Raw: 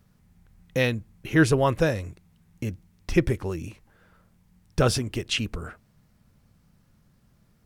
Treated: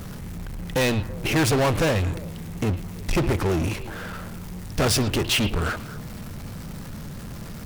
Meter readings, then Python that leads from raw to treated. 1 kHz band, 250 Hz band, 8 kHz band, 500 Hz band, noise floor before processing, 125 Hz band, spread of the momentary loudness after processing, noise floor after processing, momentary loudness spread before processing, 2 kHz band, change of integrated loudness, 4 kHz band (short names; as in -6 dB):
+3.5 dB, +1.5 dB, +7.0 dB, +1.0 dB, -63 dBFS, +3.0 dB, 16 LU, -37 dBFS, 17 LU, +2.0 dB, +1.5 dB, +5.5 dB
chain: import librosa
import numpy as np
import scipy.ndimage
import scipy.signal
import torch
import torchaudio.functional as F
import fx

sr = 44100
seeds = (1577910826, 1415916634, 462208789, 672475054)

p1 = fx.power_curve(x, sr, exponent=0.5)
p2 = 10.0 ** (-17.5 / 20.0) * np.tanh(p1 / 10.0 ** (-17.5 / 20.0))
p3 = fx.hum_notches(p2, sr, base_hz=60, count=2)
y = p3 + fx.echo_stepped(p3, sr, ms=110, hz=3100.0, octaves=-1.4, feedback_pct=70, wet_db=-11.5, dry=0)